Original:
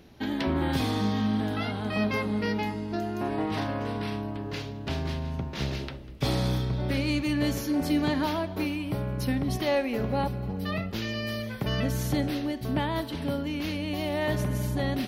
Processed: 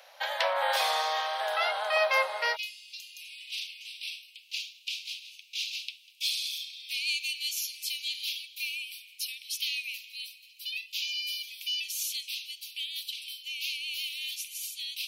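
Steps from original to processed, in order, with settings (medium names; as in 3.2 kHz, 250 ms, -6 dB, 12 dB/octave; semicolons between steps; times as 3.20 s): steep high-pass 520 Hz 96 dB/octave, from 2.55 s 2.4 kHz; trim +6.5 dB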